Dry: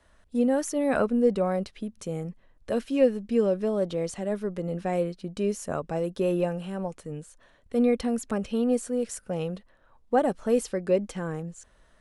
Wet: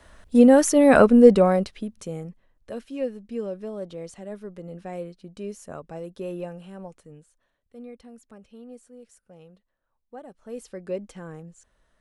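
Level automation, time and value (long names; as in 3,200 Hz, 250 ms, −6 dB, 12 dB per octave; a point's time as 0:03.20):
0:01.32 +10 dB
0:01.77 +3 dB
0:02.75 −7.5 dB
0:06.92 −7.5 dB
0:07.77 −19 dB
0:10.27 −19 dB
0:10.81 −7 dB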